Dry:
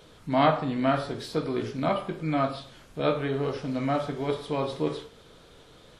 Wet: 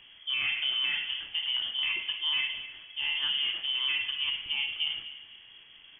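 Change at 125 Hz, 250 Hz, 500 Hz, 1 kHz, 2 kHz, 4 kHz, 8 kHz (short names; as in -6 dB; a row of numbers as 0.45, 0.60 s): under -30 dB, under -30 dB, under -35 dB, -21.0 dB, +6.5 dB, +15.0 dB, n/a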